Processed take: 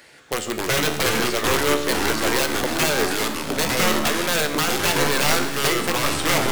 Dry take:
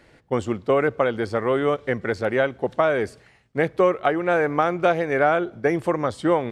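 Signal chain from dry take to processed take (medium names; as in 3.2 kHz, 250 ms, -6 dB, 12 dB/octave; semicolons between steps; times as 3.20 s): tilt EQ +3.5 dB/octave; in parallel at -1 dB: compression 6:1, threshold -29 dBFS, peak gain reduction 13.5 dB; on the sum: integer overflow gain 13.5 dB; two-band feedback delay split 1.2 kHz, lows 144 ms, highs 315 ms, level -13.5 dB; ever faster or slower copies 179 ms, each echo -4 st, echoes 3; feedback comb 73 Hz, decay 0.97 s, harmonics all, mix 70%; trim +7.5 dB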